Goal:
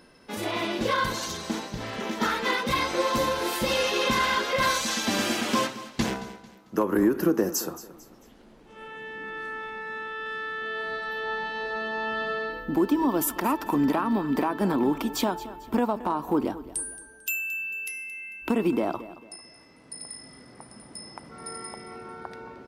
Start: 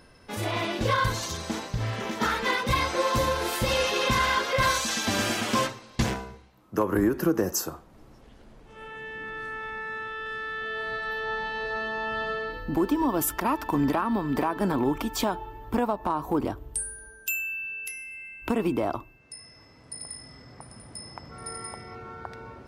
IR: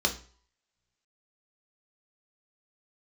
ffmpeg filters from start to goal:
-filter_complex "[0:a]lowshelf=f=150:t=q:w=1.5:g=-8,aecho=1:1:223|446|669:0.158|0.0571|0.0205,asplit=2[a][b];[1:a]atrim=start_sample=2205,asetrate=83790,aresample=44100[c];[b][c]afir=irnorm=-1:irlink=0,volume=-23.5dB[d];[a][d]amix=inputs=2:normalize=0"

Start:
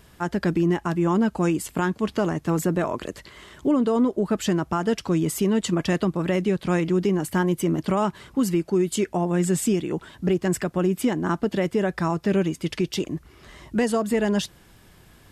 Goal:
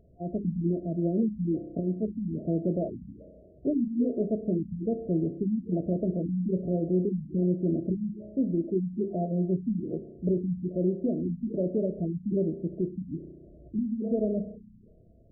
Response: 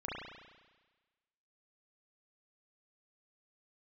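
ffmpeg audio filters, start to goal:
-filter_complex "[0:a]bandreject=f=50:t=h:w=6,bandreject=f=100:t=h:w=6,bandreject=f=150:t=h:w=6,bandreject=f=200:t=h:w=6,bandreject=f=250:t=h:w=6,bandreject=f=300:t=h:w=6,bandreject=f=350:t=h:w=6,bandreject=f=400:t=h:w=6,bandreject=f=450:t=h:w=6,asplit=2[a][b];[1:a]atrim=start_sample=2205[c];[b][c]afir=irnorm=-1:irlink=0,volume=-11.5dB[d];[a][d]amix=inputs=2:normalize=0,afftfilt=real='re*(1-between(b*sr/4096,710,11000))':imag='im*(1-between(b*sr/4096,710,11000))':win_size=4096:overlap=0.75,afftfilt=real='re*lt(b*sr/1024,250*pow(4100/250,0.5+0.5*sin(2*PI*1.2*pts/sr)))':imag='im*lt(b*sr/1024,250*pow(4100/250,0.5+0.5*sin(2*PI*1.2*pts/sr)))':win_size=1024:overlap=0.75,volume=-5.5dB"

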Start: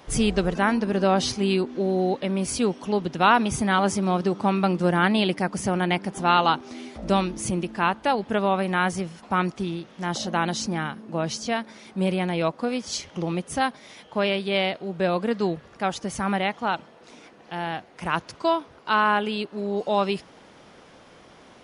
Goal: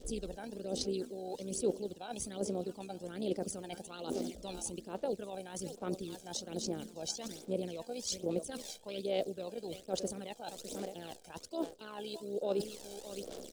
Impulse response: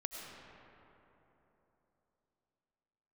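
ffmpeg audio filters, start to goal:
-filter_complex "[0:a]aecho=1:1:985:0.119,tremolo=f=68:d=0.519,acrusher=bits=9:dc=4:mix=0:aa=0.000001,areverse,acompressor=threshold=-38dB:ratio=10,areverse,adynamicequalizer=threshold=0.00158:dfrequency=1100:dqfactor=1.8:tfrequency=1100:tqfactor=1.8:attack=5:release=100:ratio=0.375:range=2:mode=cutabove:tftype=bell,acrossover=split=340[a][b];[a]acompressor=mode=upward:threshold=-54dB:ratio=2.5[c];[c][b]amix=inputs=2:normalize=0,atempo=1.6,equalizer=f=125:t=o:w=1:g=-12,equalizer=f=500:t=o:w=1:g=11,equalizer=f=1k:t=o:w=1:g=-10,equalizer=f=2k:t=o:w=1:g=-10,equalizer=f=4k:t=o:w=1:g=4,equalizer=f=8k:t=o:w=1:g=9,aphaser=in_gain=1:out_gain=1:delay=1.3:decay=0.59:speed=1.2:type=sinusoidal,volume=-1dB"

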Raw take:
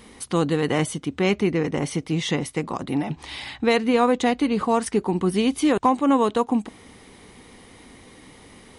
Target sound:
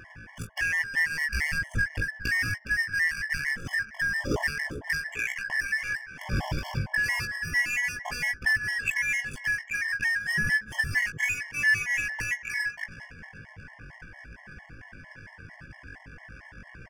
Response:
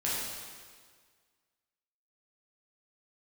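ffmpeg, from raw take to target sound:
-filter_complex "[0:a]afftfilt=real='real(if(lt(b,272),68*(eq(floor(b/68),0)*2+eq(floor(b/68),1)*0+eq(floor(b/68),2)*3+eq(floor(b/68),3)*1)+mod(b,68),b),0)':imag='imag(if(lt(b,272),68*(eq(floor(b/68),0)*2+eq(floor(b/68),1)*0+eq(floor(b/68),2)*3+eq(floor(b/68),3)*1)+mod(b,68),b),0)':win_size=2048:overlap=0.75,bandreject=f=217.7:t=h:w=4,bandreject=f=435.4:t=h:w=4,bandreject=f=653.1:t=h:w=4,bandreject=f=870.8:t=h:w=4,bandreject=f=1.0885k:t=h:w=4,bandreject=f=1.3062k:t=h:w=4,atempo=0.52,asplit=2[a][b];[b]alimiter=limit=-13dB:level=0:latency=1:release=83,volume=0dB[c];[a][c]amix=inputs=2:normalize=0,acompressor=threshold=-24dB:ratio=4,asplit=2[d][e];[e]adelay=409,lowpass=f=1.8k:p=1,volume=-11.5dB,asplit=2[f][g];[g]adelay=409,lowpass=f=1.8k:p=1,volume=0.39,asplit=2[h][i];[i]adelay=409,lowpass=f=1.8k:p=1,volume=0.39,asplit=2[j][k];[k]adelay=409,lowpass=f=1.8k:p=1,volume=0.39[l];[d][f][h][j][l]amix=inputs=5:normalize=0,adynamicsmooth=sensitivity=4:basefreq=1.1k,asuperstop=centerf=4000:order=12:qfactor=4.3,bass=f=250:g=14,treble=f=4k:g=0,asplit=2[m][n];[n]adelay=19,volume=-7.5dB[o];[m][o]amix=inputs=2:normalize=0,afftfilt=real='re*gt(sin(2*PI*4.4*pts/sr)*(1-2*mod(floor(b*sr/1024/560),2)),0)':imag='im*gt(sin(2*PI*4.4*pts/sr)*(1-2*mod(floor(b*sr/1024/560),2)),0)':win_size=1024:overlap=0.75"

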